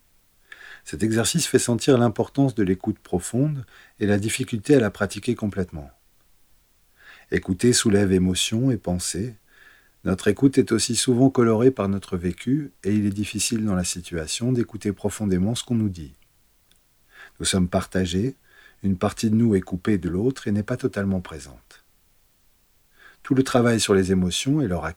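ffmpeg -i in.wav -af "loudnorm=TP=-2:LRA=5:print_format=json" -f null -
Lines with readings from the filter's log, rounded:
"input_i" : "-22.3",
"input_tp" : "-5.7",
"input_lra" : "5.4",
"input_thresh" : "-33.6",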